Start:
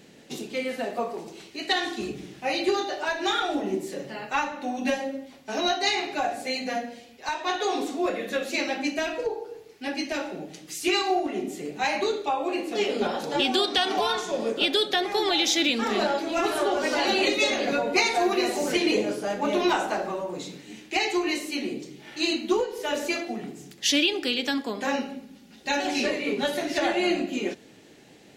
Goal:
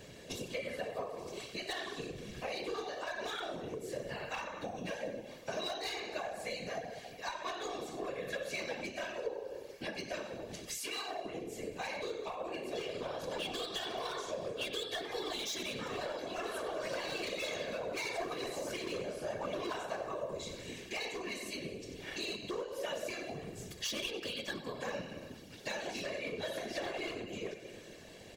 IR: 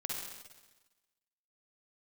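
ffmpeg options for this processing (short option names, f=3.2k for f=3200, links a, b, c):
-filter_complex "[0:a]aecho=1:1:94|188|282|376|470:0.2|0.102|0.0519|0.0265|0.0135,volume=21dB,asoftclip=hard,volume=-21dB,acompressor=threshold=-38dB:ratio=6,asettb=1/sr,asplit=3[a][b][c];[a]atrim=end=10.784[d];[b]atrim=start=10.78:end=11.26,asetpts=PTS-STARTPTS,afade=t=in:d=0.004:c=qsin,afade=t=out:st=0.476:d=0.004:c=qsin,highpass=450[e];[c]atrim=start=11.256[f];[d][e]acrossfade=d=0.004:c1=hsin:c2=qsin[g];[g][f]acrossfade=d=0.004:c1=qsin:c2=hsin,afftfilt=real='hypot(re,im)*cos(2*PI*random(0))':imag='hypot(re,im)*sin(2*PI*random(1))':win_size=512:overlap=0.75,aecho=1:1:1.8:0.45,volume=5.5dB"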